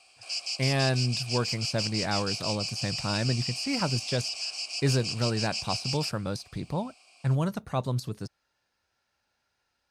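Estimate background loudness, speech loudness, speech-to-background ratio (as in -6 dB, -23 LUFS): -31.5 LUFS, -30.5 LUFS, 1.0 dB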